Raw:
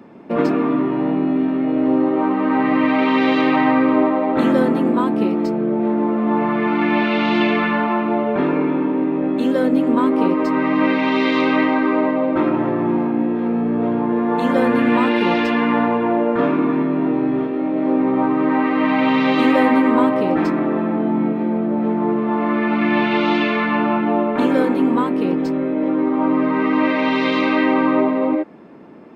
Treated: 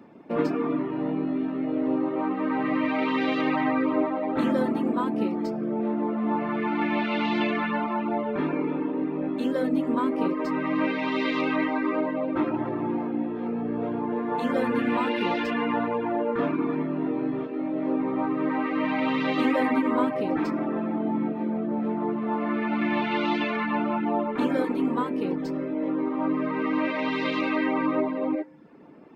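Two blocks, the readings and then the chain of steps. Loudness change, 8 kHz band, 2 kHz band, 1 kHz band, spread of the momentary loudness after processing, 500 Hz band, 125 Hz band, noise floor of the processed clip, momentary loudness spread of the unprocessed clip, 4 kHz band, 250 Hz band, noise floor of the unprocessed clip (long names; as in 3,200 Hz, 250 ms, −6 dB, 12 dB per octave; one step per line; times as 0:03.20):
−8.5 dB, can't be measured, −8.5 dB, −8.5 dB, 4 LU, −8.5 dB, −8.5 dB, −31 dBFS, 4 LU, −8.0 dB, −9.0 dB, −21 dBFS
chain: feedback delay network reverb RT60 1.1 s, high-frequency decay 0.9×, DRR 10 dB
reverb reduction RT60 0.62 s
level −7 dB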